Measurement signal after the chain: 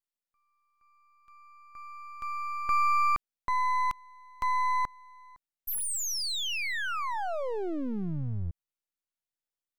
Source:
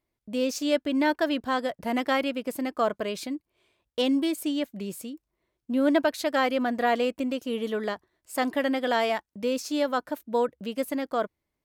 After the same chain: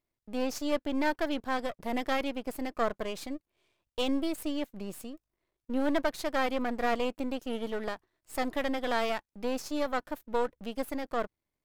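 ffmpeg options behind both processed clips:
-af "aeval=exprs='if(lt(val(0),0),0.251*val(0),val(0))':c=same,volume=-2dB"

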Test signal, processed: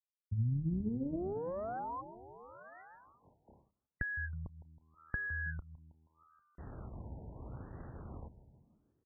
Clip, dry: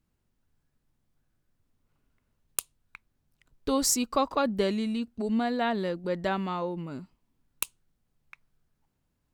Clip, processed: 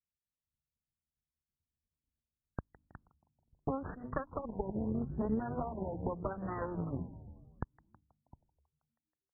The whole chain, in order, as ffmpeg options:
-filter_complex "[0:a]equalizer=f=15k:t=o:w=1.5:g=4,agate=range=-33dB:threshold=-57dB:ratio=3:detection=peak,asplit=7[a][b][c][d][e][f][g];[b]adelay=160,afreqshift=-80,volume=-15dB[h];[c]adelay=320,afreqshift=-160,volume=-19.4dB[i];[d]adelay=480,afreqshift=-240,volume=-23.9dB[j];[e]adelay=640,afreqshift=-320,volume=-28.3dB[k];[f]adelay=800,afreqshift=-400,volume=-32.7dB[l];[g]adelay=960,afreqshift=-480,volume=-37.2dB[m];[a][h][i][j][k][l][m]amix=inputs=7:normalize=0,adynamicsmooth=sensitivity=8:basefreq=1.2k,bandreject=f=50:t=h:w=6,bandreject=f=100:t=h:w=6,bandreject=f=150:t=h:w=6,bandreject=f=200:t=h:w=6,bandreject=f=250:t=h:w=6,bandreject=f=300:t=h:w=6,aeval=exprs='0.398*(cos(1*acos(clip(val(0)/0.398,-1,1)))-cos(1*PI/2))+0.178*(cos(2*acos(clip(val(0)/0.398,-1,1)))-cos(2*PI/2))+0.0562*(cos(6*acos(clip(val(0)/0.398,-1,1)))-cos(6*PI/2))+0.0398*(cos(7*acos(clip(val(0)/0.398,-1,1)))-cos(7*PI/2))':c=same,highpass=66,acompressor=threshold=-41dB:ratio=12,aemphasis=mode=reproduction:type=bsi,afftfilt=real='re*lt(b*sr/1024,950*pow(2000/950,0.5+0.5*sin(2*PI*0.8*pts/sr)))':imag='im*lt(b*sr/1024,950*pow(2000/950,0.5+0.5*sin(2*PI*0.8*pts/sr)))':win_size=1024:overlap=0.75,volume=6.5dB"

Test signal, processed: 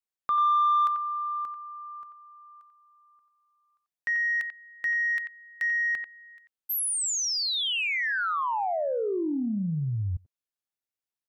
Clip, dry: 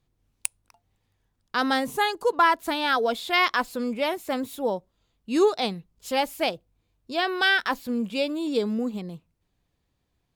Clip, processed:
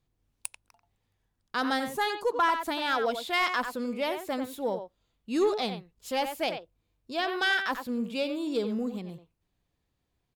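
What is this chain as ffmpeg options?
-filter_complex "[0:a]asplit=2[a][b];[b]adelay=90,highpass=300,lowpass=3.4k,asoftclip=type=hard:threshold=-13dB,volume=-8dB[c];[a][c]amix=inputs=2:normalize=0,asoftclip=type=tanh:threshold=-12dB,volume=-4dB"

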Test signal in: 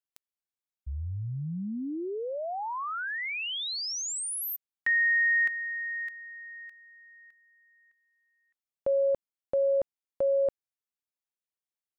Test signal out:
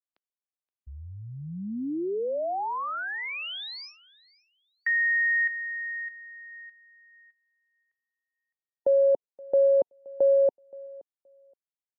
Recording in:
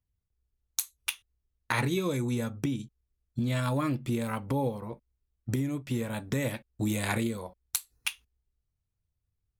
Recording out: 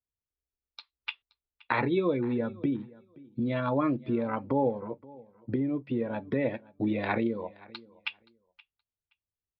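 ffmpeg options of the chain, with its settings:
-filter_complex "[0:a]afftdn=nr=12:nf=-39,acrossover=split=230 3800:gain=0.224 1 0.251[a][b][c];[a][b][c]amix=inputs=3:normalize=0,acrossover=split=1000[d][e];[d]acontrast=35[f];[f][e]amix=inputs=2:normalize=0,aecho=1:1:523|1046:0.075|0.0135,aresample=11025,aresample=44100"

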